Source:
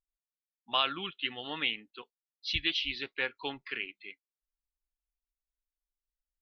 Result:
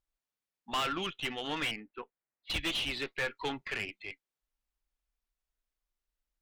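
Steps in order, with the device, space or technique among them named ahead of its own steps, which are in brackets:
0:01.71–0:02.50: Butterworth low-pass 2,400 Hz 36 dB per octave
tube preamp driven hard (tube saturation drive 34 dB, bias 0.4; high-shelf EQ 4,300 Hz −8 dB)
level +7.5 dB

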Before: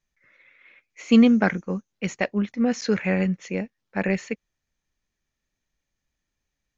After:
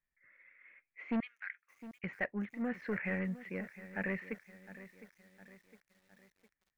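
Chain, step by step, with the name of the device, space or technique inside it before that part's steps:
0:01.20–0:02.04: Bessel high-pass filter 2,900 Hz, order 4
overdriven synthesiser ladder filter (soft clipping −16.5 dBFS, distortion −11 dB; transistor ladder low-pass 2,200 Hz, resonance 55%)
feedback echo at a low word length 709 ms, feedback 55%, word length 9 bits, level −15 dB
level −2.5 dB

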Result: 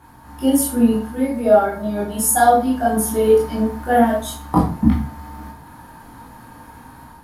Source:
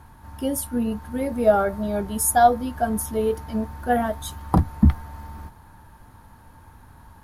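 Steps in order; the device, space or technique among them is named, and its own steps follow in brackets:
far laptop microphone (convolution reverb RT60 0.45 s, pre-delay 16 ms, DRR −5 dB; high-pass filter 140 Hz 6 dB per octave; automatic gain control gain up to 5 dB)
level −1 dB

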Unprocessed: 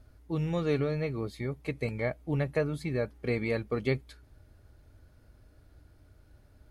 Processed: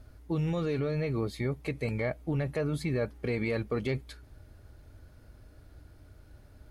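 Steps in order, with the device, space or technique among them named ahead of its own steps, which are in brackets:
soft clipper into limiter (soft clipping −17.5 dBFS, distortion −24 dB; brickwall limiter −27 dBFS, peak gain reduction 7.5 dB)
level +4.5 dB

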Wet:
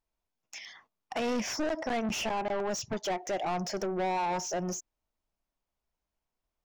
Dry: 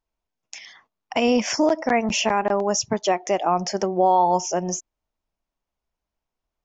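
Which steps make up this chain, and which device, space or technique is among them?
saturation between pre-emphasis and de-emphasis (high-shelf EQ 5,300 Hz +11.5 dB; soft clipping −24.5 dBFS, distortion −6 dB; high-shelf EQ 5,300 Hz −11.5 dB)
level −3 dB

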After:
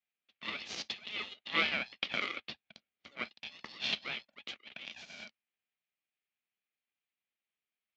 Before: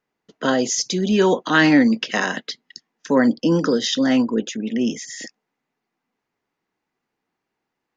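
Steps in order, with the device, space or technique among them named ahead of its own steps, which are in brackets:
Butterworth high-pass 1,700 Hz 36 dB per octave
ring modulator pedal into a guitar cabinet (ring modulator with a square carrier 420 Hz; loudspeaker in its box 93–3,600 Hz, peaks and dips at 110 Hz −5 dB, 220 Hz +7 dB, 1,000 Hz −6 dB, 1,500 Hz −9 dB)
0:02.49–0:03.12: spectral tilt −1.5 dB per octave
level −6 dB

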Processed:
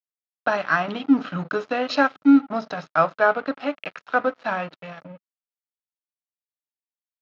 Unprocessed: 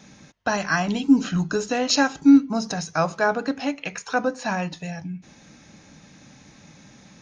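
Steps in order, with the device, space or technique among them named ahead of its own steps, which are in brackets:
blown loudspeaker (dead-zone distortion −35 dBFS; loudspeaker in its box 150–3,800 Hz, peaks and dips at 200 Hz −5 dB, 600 Hz +6 dB, 1,300 Hz +9 dB)

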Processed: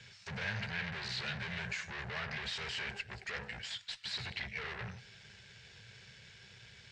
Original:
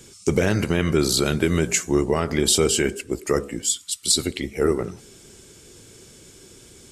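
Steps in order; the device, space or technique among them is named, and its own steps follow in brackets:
scooped metal amplifier (tube saturation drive 35 dB, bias 0.75; loudspeaker in its box 91–3,800 Hz, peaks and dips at 120 Hz +8 dB, 200 Hz +6 dB, 310 Hz −8 dB, 1,200 Hz −8 dB, 1,700 Hz +6 dB, 3,300 Hz −5 dB; guitar amp tone stack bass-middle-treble 10-0-10)
level +8.5 dB

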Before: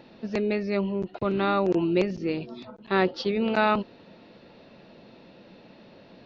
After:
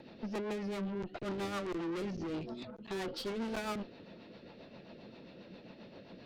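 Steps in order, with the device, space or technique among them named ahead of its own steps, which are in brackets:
overdriven rotary cabinet (tube saturation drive 35 dB, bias 0.35; rotating-speaker cabinet horn 7.5 Hz)
level +1 dB

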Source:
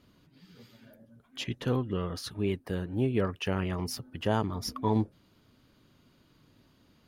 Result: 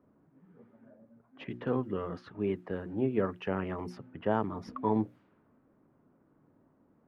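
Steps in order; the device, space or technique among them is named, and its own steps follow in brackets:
cassette deck with a dynamic noise filter (white noise bed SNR 32 dB; low-pass that shuts in the quiet parts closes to 870 Hz, open at −28 dBFS)
three-way crossover with the lows and the highs turned down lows −12 dB, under 150 Hz, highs −22 dB, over 2,200 Hz
mains-hum notches 60/120/180/240/300/360 Hz

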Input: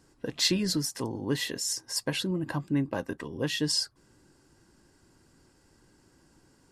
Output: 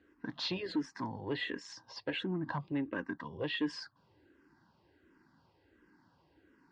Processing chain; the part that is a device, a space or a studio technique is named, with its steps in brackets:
barber-pole phaser into a guitar amplifier (frequency shifter mixed with the dry sound −1.4 Hz; soft clipping −25 dBFS, distortion −14 dB; loudspeaker in its box 76–4,000 Hz, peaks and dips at 130 Hz −4 dB, 300 Hz +3 dB, 970 Hz +6 dB, 1,700 Hz +5 dB)
level −2.5 dB

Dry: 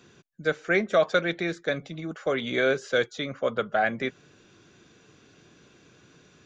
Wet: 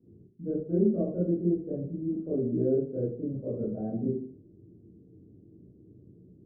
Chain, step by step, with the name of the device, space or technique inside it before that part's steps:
next room (low-pass filter 360 Hz 24 dB per octave; convolution reverb RT60 0.55 s, pre-delay 19 ms, DRR −9 dB)
level −5 dB

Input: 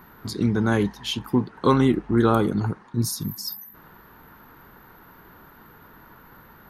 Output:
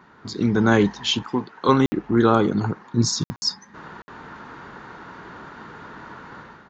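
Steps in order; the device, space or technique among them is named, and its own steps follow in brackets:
call with lost packets (high-pass filter 150 Hz 6 dB per octave; downsampling to 16,000 Hz; automatic gain control gain up to 11.5 dB; dropped packets of 60 ms random)
0:01.23–0:01.69: low-shelf EQ 400 Hz −11 dB
level −1 dB

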